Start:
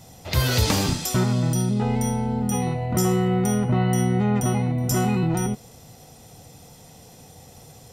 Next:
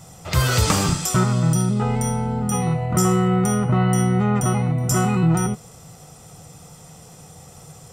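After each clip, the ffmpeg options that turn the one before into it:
-af "equalizer=f=160:t=o:w=0.33:g=7,equalizer=f=250:t=o:w=0.33:g=-6,equalizer=f=1250:t=o:w=0.33:g=10,equalizer=f=4000:t=o:w=0.33:g=-4,equalizer=f=8000:t=o:w=0.33:g=8,equalizer=f=12500:t=o:w=0.33:g=-4,volume=1.19"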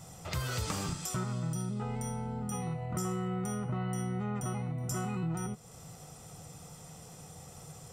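-af "acompressor=threshold=0.02:ratio=2,volume=0.501"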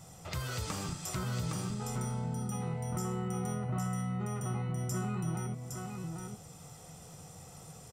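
-af "aecho=1:1:812:0.631,volume=0.75"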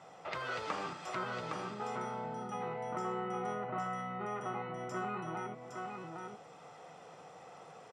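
-af "highpass=440,lowpass=2300,volume=1.88"

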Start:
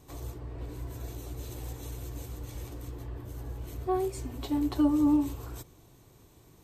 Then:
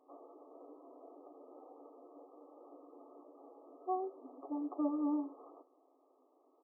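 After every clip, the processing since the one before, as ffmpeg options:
-af "afftfilt=real='re*between(b*sr/4096,250,1300)':imag='im*between(b*sr/4096,250,1300)':win_size=4096:overlap=0.75,aecho=1:1:1.5:0.48,volume=0.501"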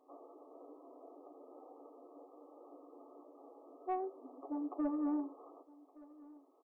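-af "asoftclip=type=tanh:threshold=0.0501,aecho=1:1:1169:0.0841"

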